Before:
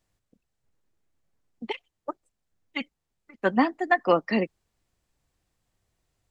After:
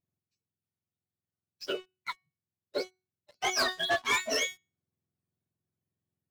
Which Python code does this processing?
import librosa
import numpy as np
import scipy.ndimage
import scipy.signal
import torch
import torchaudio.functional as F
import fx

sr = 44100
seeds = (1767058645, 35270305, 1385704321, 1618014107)

y = fx.octave_mirror(x, sr, pivot_hz=1100.0)
y = fx.comb_fb(y, sr, f0_hz=370.0, decay_s=0.35, harmonics='all', damping=0.0, mix_pct=80)
y = fx.leveller(y, sr, passes=3)
y = y * librosa.db_to_amplitude(3.0)